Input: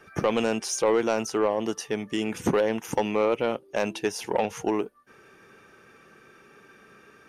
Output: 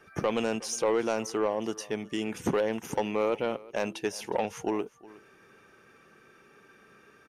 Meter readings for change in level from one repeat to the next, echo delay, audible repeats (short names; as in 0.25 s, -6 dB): no steady repeat, 0.364 s, 1